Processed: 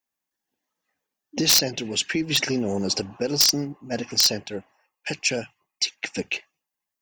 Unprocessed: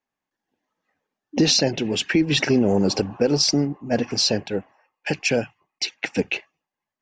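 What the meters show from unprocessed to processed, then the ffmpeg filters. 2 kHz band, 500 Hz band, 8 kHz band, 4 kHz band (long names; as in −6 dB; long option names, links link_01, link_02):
−2.5 dB, −6.5 dB, +3.5 dB, +1.0 dB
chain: -af "crystalizer=i=3.5:c=0,aeval=exprs='(mod(1.12*val(0)+1,2)-1)/1.12':channel_layout=same,volume=-7dB"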